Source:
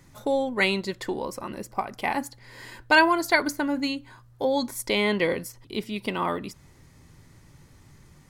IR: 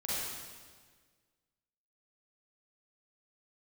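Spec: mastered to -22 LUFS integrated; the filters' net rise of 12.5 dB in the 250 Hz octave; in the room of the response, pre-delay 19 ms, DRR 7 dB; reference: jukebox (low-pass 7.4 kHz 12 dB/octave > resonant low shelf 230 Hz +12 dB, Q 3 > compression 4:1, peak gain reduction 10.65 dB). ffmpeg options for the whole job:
-filter_complex "[0:a]equalizer=f=250:t=o:g=8.5,asplit=2[s0][s1];[1:a]atrim=start_sample=2205,adelay=19[s2];[s1][s2]afir=irnorm=-1:irlink=0,volume=0.251[s3];[s0][s3]amix=inputs=2:normalize=0,lowpass=7400,lowshelf=f=230:t=q:w=3:g=12,acompressor=threshold=0.112:ratio=4,volume=1.33"

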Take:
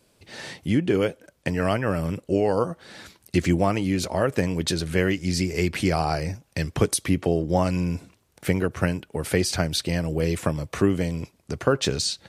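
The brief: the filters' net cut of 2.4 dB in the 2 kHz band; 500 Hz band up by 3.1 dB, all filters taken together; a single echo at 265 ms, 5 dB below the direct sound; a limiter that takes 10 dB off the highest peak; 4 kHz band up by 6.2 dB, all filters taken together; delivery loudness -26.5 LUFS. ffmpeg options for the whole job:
-af "equalizer=f=500:t=o:g=4,equalizer=f=2000:t=o:g=-5.5,equalizer=f=4000:t=o:g=8.5,alimiter=limit=0.211:level=0:latency=1,aecho=1:1:265:0.562,volume=0.841"

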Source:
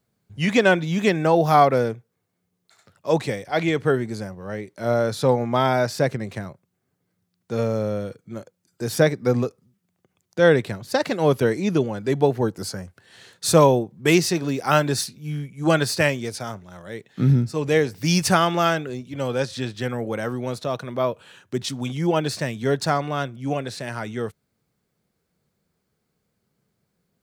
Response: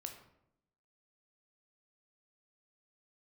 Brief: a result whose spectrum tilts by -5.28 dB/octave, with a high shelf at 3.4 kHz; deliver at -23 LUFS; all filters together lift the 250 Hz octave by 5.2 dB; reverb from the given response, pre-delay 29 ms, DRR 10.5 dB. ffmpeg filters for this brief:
-filter_complex "[0:a]equalizer=f=250:t=o:g=7,highshelf=f=3400:g=5.5,asplit=2[s0][s1];[1:a]atrim=start_sample=2205,adelay=29[s2];[s1][s2]afir=irnorm=-1:irlink=0,volume=0.447[s3];[s0][s3]amix=inputs=2:normalize=0,volume=0.668"

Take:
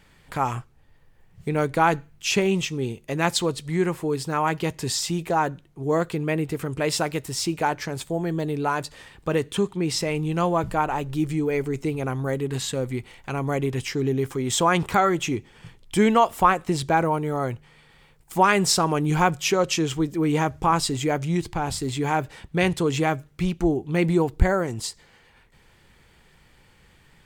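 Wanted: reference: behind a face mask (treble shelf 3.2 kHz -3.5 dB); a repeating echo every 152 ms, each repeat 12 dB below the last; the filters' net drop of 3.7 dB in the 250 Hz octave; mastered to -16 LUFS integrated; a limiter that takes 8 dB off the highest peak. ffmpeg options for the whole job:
-af "equalizer=f=250:t=o:g=-6,alimiter=limit=0.237:level=0:latency=1,highshelf=f=3200:g=-3.5,aecho=1:1:152|304|456:0.251|0.0628|0.0157,volume=3.55"

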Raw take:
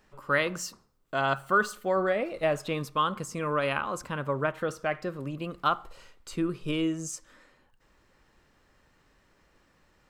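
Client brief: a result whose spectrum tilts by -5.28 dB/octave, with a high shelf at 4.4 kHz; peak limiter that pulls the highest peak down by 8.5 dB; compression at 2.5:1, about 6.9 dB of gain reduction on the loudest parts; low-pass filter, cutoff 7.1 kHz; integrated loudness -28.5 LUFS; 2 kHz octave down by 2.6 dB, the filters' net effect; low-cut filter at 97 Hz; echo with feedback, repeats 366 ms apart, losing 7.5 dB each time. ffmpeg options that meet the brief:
-af "highpass=97,lowpass=7100,equalizer=f=2000:t=o:g=-3,highshelf=f=4400:g=-4.5,acompressor=threshold=0.0251:ratio=2.5,alimiter=level_in=1.41:limit=0.0631:level=0:latency=1,volume=0.708,aecho=1:1:366|732|1098|1464|1830:0.422|0.177|0.0744|0.0312|0.0131,volume=2.82"

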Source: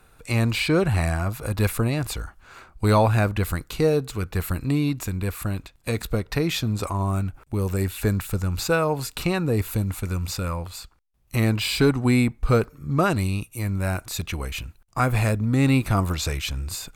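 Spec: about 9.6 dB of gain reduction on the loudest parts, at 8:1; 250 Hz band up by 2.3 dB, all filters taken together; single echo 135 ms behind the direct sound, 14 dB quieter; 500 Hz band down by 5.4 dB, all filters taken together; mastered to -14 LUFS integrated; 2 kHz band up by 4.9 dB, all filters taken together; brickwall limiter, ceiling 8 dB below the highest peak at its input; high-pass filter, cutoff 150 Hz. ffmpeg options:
-af "highpass=150,equalizer=f=250:t=o:g=6,equalizer=f=500:t=o:g=-9,equalizer=f=2000:t=o:g=7,acompressor=threshold=0.0708:ratio=8,alimiter=limit=0.112:level=0:latency=1,aecho=1:1:135:0.2,volume=6.68"

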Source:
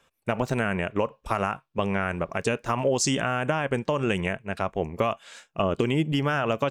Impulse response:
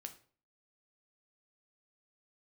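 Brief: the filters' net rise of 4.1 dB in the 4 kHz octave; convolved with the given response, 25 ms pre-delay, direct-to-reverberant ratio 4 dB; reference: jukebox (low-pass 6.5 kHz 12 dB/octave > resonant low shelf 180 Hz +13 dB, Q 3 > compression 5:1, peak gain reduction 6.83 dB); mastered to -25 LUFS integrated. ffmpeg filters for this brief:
-filter_complex "[0:a]equalizer=f=4000:t=o:g=7,asplit=2[s0][s1];[1:a]atrim=start_sample=2205,adelay=25[s2];[s1][s2]afir=irnorm=-1:irlink=0,volume=1.06[s3];[s0][s3]amix=inputs=2:normalize=0,lowpass=6500,lowshelf=f=180:t=q:w=3:g=13,acompressor=threshold=0.282:ratio=5,volume=0.447"

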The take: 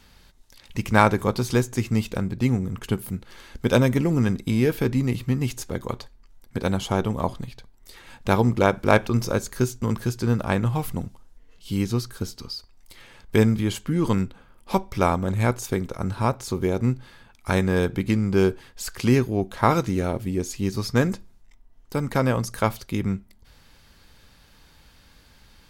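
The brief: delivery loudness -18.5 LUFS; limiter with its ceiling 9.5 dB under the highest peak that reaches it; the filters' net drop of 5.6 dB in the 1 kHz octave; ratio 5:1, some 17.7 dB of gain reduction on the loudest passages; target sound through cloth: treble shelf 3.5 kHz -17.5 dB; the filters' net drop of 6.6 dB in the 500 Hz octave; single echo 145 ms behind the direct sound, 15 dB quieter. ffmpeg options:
-af "equalizer=f=500:t=o:g=-7.5,equalizer=f=1000:t=o:g=-3,acompressor=threshold=0.0158:ratio=5,alimiter=level_in=1.58:limit=0.0631:level=0:latency=1,volume=0.631,highshelf=f=3500:g=-17.5,aecho=1:1:145:0.178,volume=15.8"

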